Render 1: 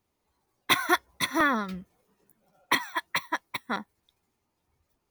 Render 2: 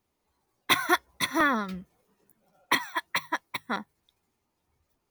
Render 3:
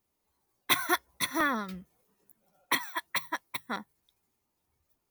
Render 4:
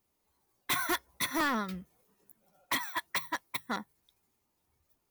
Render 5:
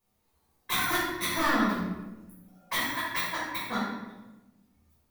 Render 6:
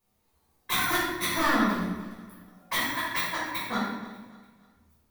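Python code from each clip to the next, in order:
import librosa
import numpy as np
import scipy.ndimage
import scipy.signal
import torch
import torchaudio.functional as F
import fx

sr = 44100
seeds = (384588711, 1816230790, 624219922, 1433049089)

y1 = fx.hum_notches(x, sr, base_hz=50, count=3)
y2 = fx.high_shelf(y1, sr, hz=7900.0, db=9.5)
y2 = F.gain(torch.from_numpy(y2), -4.5).numpy()
y3 = np.clip(10.0 ** (27.5 / 20.0) * y2, -1.0, 1.0) / 10.0 ** (27.5 / 20.0)
y3 = F.gain(torch.from_numpy(y3), 1.5).numpy()
y4 = fx.room_shoebox(y3, sr, seeds[0], volume_m3=530.0, walls='mixed', distance_m=5.4)
y4 = F.gain(torch.from_numpy(y4), -7.0).numpy()
y5 = fx.echo_feedback(y4, sr, ms=294, feedback_pct=41, wet_db=-19)
y5 = F.gain(torch.from_numpy(y5), 1.5).numpy()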